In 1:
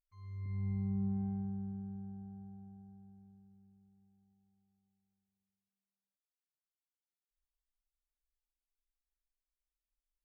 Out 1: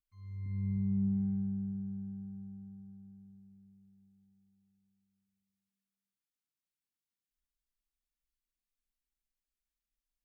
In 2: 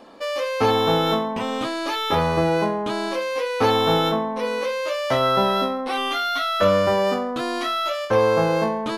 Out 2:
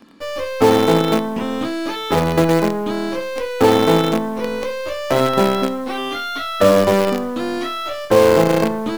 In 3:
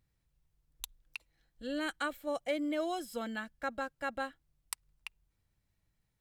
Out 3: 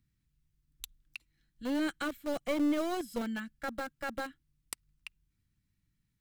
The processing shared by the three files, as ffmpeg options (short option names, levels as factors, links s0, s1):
-filter_complex "[0:a]acrossover=split=280|1200|2400[s0][s1][s2][s3];[s1]acrusher=bits=4:dc=4:mix=0:aa=0.000001[s4];[s0][s4][s2][s3]amix=inputs=4:normalize=0,equalizer=f=310:w=0.55:g=10.5,volume=0.841"